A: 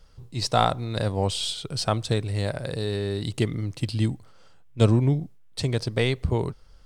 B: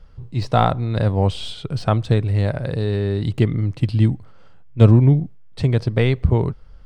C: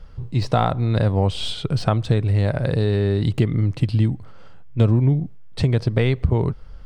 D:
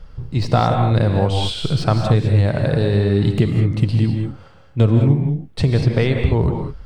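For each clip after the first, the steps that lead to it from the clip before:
de-essing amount 60%; bass and treble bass +5 dB, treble −14 dB; level +4 dB
downward compressor 3 to 1, threshold −21 dBFS, peak gain reduction 11.5 dB; level +4.5 dB
convolution reverb, pre-delay 3 ms, DRR 3.5 dB; level +2 dB

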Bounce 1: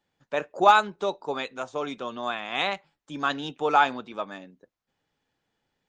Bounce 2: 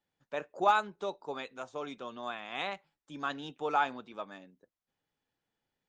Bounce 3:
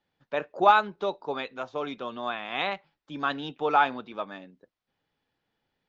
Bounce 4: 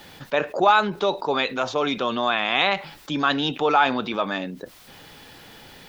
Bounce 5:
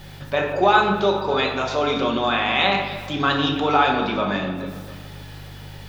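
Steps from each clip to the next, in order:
dynamic equaliser 4,500 Hz, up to −3 dB, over −36 dBFS, Q 0.91; level −8.5 dB
low-pass filter 4,900 Hz 24 dB per octave; level +7 dB
high-shelf EQ 3,700 Hz +9 dB; envelope flattener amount 50%
hum with harmonics 50 Hz, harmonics 3, −43 dBFS 0 dB per octave; delay that swaps between a low-pass and a high-pass 141 ms, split 1,400 Hz, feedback 67%, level −12 dB; rectangular room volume 360 cubic metres, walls mixed, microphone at 1.1 metres; level −1 dB

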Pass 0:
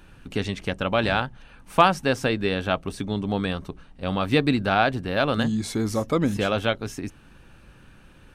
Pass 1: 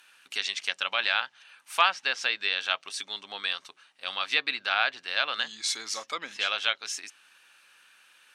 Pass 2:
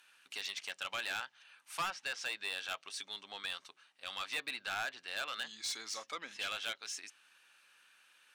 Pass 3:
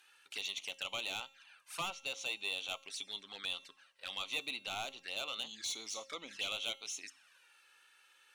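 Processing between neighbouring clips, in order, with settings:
treble cut that deepens with the level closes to 2,900 Hz, closed at −17.5 dBFS; Bessel high-pass filter 2,200 Hz, order 2; dynamic equaliser 5,300 Hz, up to +6 dB, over −49 dBFS, Q 0.73; level +4 dB
soft clipping −24 dBFS, distortion −7 dB; level −7 dB
tuned comb filter 270 Hz, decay 0.67 s, mix 50%; flanger swept by the level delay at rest 2.7 ms, full sweep at −45.5 dBFS; level +8.5 dB

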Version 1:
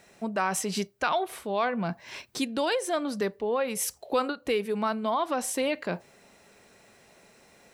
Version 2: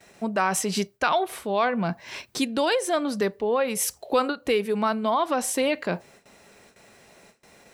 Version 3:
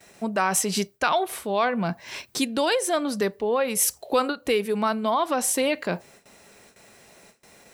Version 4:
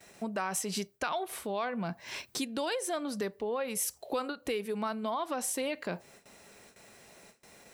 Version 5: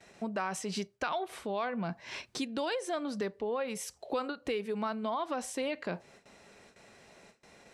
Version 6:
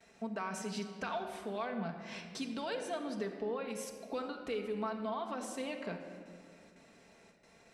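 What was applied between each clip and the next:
noise gate with hold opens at −47 dBFS; level +4 dB
high-shelf EQ 6,600 Hz +6.5 dB
downward compressor 2 to 1, threshold −32 dBFS, peak gain reduction 9 dB; level −3.5 dB
high-frequency loss of the air 70 metres
rectangular room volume 3,900 cubic metres, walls mixed, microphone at 1.6 metres; level −6.5 dB

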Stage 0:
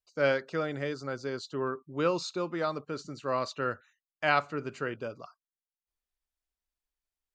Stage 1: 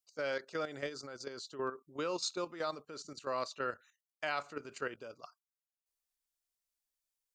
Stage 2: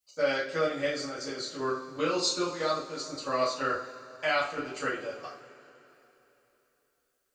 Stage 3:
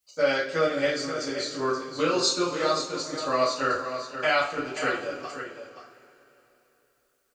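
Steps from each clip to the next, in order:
bass and treble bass −9 dB, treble +9 dB; output level in coarse steps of 11 dB; level −2 dB
convolution reverb, pre-delay 3 ms, DRR −9 dB
single-tap delay 528 ms −9.5 dB; level +4 dB

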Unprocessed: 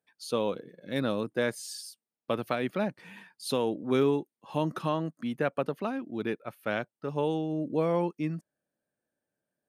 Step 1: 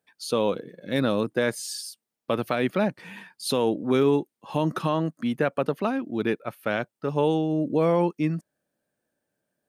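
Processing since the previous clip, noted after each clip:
brickwall limiter −18.5 dBFS, peak gain reduction 3.5 dB
level +6.5 dB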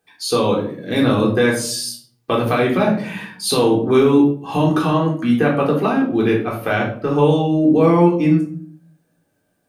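in parallel at +1 dB: downward compressor, threshold −30 dBFS, peak gain reduction 13 dB
on the sum: rectangular room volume 520 cubic metres, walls furnished, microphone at 3.7 metres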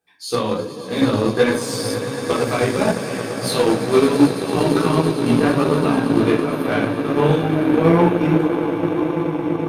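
echo that builds up and dies away 112 ms, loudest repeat 8, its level −13 dB
multi-voice chorus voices 2, 1.3 Hz, delay 15 ms, depth 3.3 ms
harmonic generator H 7 −25 dB, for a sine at −2.5 dBFS
level +1 dB

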